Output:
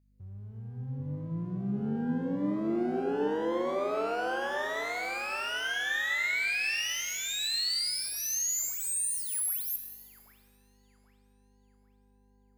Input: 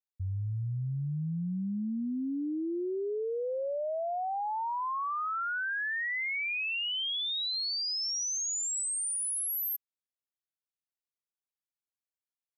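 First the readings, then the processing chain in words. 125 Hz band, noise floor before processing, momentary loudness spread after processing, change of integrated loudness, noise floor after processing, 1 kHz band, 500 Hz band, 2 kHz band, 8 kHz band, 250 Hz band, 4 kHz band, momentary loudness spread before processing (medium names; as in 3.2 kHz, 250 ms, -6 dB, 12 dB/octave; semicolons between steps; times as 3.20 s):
-3.0 dB, under -85 dBFS, 10 LU, +1.5 dB, -64 dBFS, -2.5 dB, +2.0 dB, +3.0 dB, +1.0 dB, +2.5 dB, -0.5 dB, 5 LU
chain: comb filter that takes the minimum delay 0.46 ms; high-pass 200 Hz 12 dB/octave; hum 50 Hz, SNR 33 dB; on a send: feedback echo behind a low-pass 784 ms, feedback 36%, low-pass 1.5 kHz, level -4 dB; on the sum: pitch-shifted reverb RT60 1.4 s, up +12 st, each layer -8 dB, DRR 6 dB; trim +2 dB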